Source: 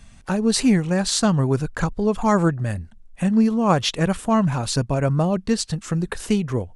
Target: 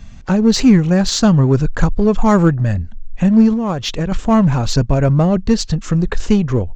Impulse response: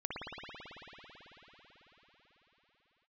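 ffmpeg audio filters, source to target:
-filter_complex "[0:a]asubboost=boost=3:cutoff=57,aresample=16000,aresample=44100,lowshelf=frequency=380:gain=7,asplit=2[link_01][link_02];[link_02]volume=19dB,asoftclip=hard,volume=-19dB,volume=-7.5dB[link_03];[link_01][link_03]amix=inputs=2:normalize=0,asettb=1/sr,asplit=3[link_04][link_05][link_06];[link_04]atrim=end=3.534[link_07];[link_05]atrim=start=3.53:end=4.12,asetpts=PTS-STARTPTS,afade=type=in:duration=0.004:curve=qsin,afade=type=out:start_time=0.586:duration=0.004:curve=qsin,acompressor=threshold=-18dB:ratio=6[link_08];[link_06]atrim=start=4.116[link_09];[link_07][link_08]acrossfade=duration=0.004:curve1=hsin:curve2=qsin[link_10];[link_10][link_09]acrossfade=duration=0.004:curve1=qsin:curve2=hsin,volume=1.5dB"

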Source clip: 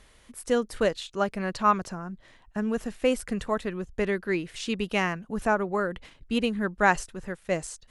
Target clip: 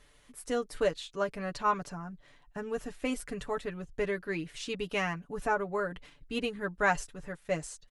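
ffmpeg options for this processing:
ffmpeg -i in.wav -af "aecho=1:1:6.9:0.71,volume=-6.5dB" out.wav

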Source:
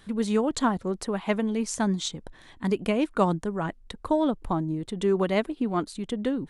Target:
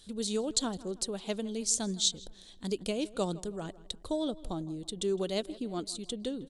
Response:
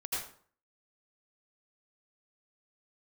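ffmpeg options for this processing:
-filter_complex "[0:a]equalizer=frequency=125:width_type=o:width=1:gain=-8,equalizer=frequency=250:width_type=o:width=1:gain=-5,equalizer=frequency=1000:width_type=o:width=1:gain=-11,equalizer=frequency=2000:width_type=o:width=1:gain=-12,equalizer=frequency=4000:width_type=o:width=1:gain=9,equalizer=frequency=8000:width_type=o:width=1:gain=8,asplit=2[link_01][link_02];[link_02]adelay=161,lowpass=frequency=3200:poles=1,volume=-19dB,asplit=2[link_03][link_04];[link_04]adelay=161,lowpass=frequency=3200:poles=1,volume=0.5,asplit=2[link_05][link_06];[link_06]adelay=161,lowpass=frequency=3200:poles=1,volume=0.5,asplit=2[link_07][link_08];[link_08]adelay=161,lowpass=frequency=3200:poles=1,volume=0.5[link_09];[link_01][link_03][link_05][link_07][link_09]amix=inputs=5:normalize=0,volume=-3dB"

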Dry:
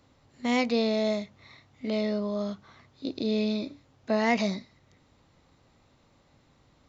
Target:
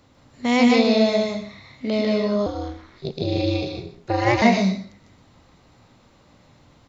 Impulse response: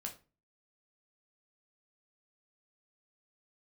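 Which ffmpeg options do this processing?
-filter_complex "[0:a]aecho=1:1:124:0.211,asplit=2[link_01][link_02];[1:a]atrim=start_sample=2205,adelay=149[link_03];[link_02][link_03]afir=irnorm=-1:irlink=0,volume=1.5dB[link_04];[link_01][link_04]amix=inputs=2:normalize=0,asettb=1/sr,asplit=3[link_05][link_06][link_07];[link_05]atrim=end=2.464[link_08];[link_06]atrim=start=2.46:end=4.42,asetpts=PTS-STARTPTS,afade=type=in:duration=0.004:curve=qsin,afade=type=out:start_time=1.956:duration=0.004:curve=qsin,aeval=exprs='val(0)*sin(2*PI*120*n/s)':channel_layout=same[link_09];[link_07]atrim=start=4.416[link_10];[link_08][link_09]acrossfade=duration=0.004:curve1=hsin:curve2=qsin[link_11];[link_11][link_10]acrossfade=duration=0.004:curve1=qsin:curve2=hsin,volume=6dB"

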